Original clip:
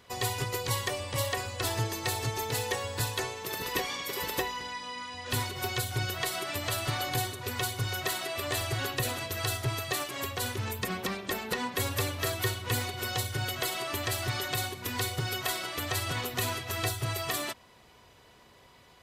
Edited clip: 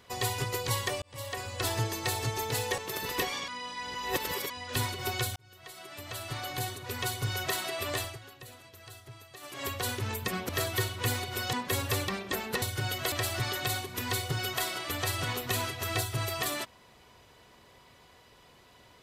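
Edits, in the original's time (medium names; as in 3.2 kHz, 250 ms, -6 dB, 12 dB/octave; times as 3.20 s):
1.02–1.59 s: fade in linear
2.78–3.35 s: delete
4.05–5.07 s: reverse
5.93–7.86 s: fade in
8.49–10.24 s: dip -17.5 dB, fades 0.27 s
11.06–11.60 s: swap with 12.15–13.19 s
13.69–14.00 s: delete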